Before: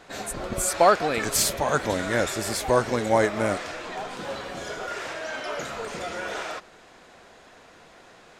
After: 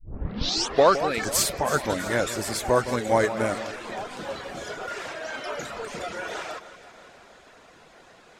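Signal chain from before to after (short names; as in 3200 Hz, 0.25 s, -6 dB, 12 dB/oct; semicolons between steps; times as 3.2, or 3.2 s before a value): tape start at the beginning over 0.99 s; reverb removal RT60 0.64 s; echo with dull and thin repeats by turns 0.163 s, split 1900 Hz, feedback 74%, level -12 dB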